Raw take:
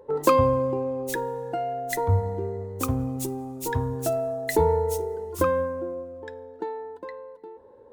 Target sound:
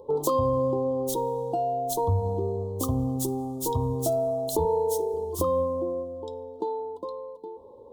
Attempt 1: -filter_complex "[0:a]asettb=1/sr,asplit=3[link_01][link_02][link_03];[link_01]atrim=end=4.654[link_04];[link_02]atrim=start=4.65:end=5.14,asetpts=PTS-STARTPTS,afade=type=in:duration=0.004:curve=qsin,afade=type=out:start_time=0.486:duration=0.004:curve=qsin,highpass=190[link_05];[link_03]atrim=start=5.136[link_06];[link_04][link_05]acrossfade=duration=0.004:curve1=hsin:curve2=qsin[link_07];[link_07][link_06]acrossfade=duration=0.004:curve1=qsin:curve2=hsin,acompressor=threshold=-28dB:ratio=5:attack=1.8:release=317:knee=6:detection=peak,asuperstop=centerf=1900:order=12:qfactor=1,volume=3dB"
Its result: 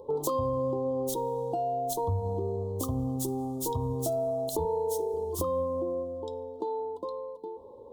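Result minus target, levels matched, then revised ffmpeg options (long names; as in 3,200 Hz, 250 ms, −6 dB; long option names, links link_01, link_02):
downward compressor: peak gain reduction +5 dB
-filter_complex "[0:a]asettb=1/sr,asplit=3[link_01][link_02][link_03];[link_01]atrim=end=4.654[link_04];[link_02]atrim=start=4.65:end=5.14,asetpts=PTS-STARTPTS,afade=type=in:duration=0.004:curve=qsin,afade=type=out:start_time=0.486:duration=0.004:curve=qsin,highpass=190[link_05];[link_03]atrim=start=5.136[link_06];[link_04][link_05]acrossfade=duration=0.004:curve1=hsin:curve2=qsin[link_07];[link_07][link_06]acrossfade=duration=0.004:curve1=qsin:curve2=hsin,acompressor=threshold=-21.5dB:ratio=5:attack=1.8:release=317:knee=6:detection=peak,asuperstop=centerf=1900:order=12:qfactor=1,volume=3dB"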